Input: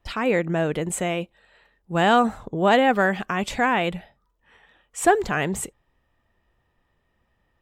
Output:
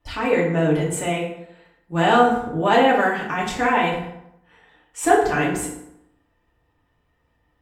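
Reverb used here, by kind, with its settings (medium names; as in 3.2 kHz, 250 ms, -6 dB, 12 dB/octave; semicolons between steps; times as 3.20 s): FDN reverb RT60 0.79 s, low-frequency decay 1.05×, high-frequency decay 0.65×, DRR -5 dB; trim -4 dB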